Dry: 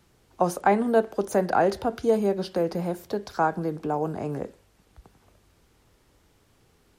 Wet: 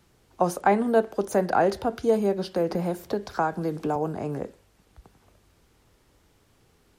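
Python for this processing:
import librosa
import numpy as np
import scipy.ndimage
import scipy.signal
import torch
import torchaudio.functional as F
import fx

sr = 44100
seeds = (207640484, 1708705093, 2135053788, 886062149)

y = fx.band_squash(x, sr, depth_pct=70, at=(2.7, 3.96))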